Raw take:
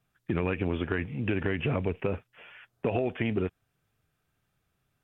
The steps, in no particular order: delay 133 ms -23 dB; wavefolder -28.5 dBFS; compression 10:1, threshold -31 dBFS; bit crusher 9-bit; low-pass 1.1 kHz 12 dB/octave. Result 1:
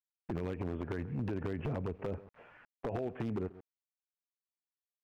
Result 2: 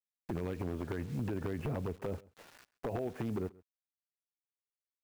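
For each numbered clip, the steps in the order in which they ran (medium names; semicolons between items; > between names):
delay > bit crusher > low-pass > compression > wavefolder; low-pass > bit crusher > compression > wavefolder > delay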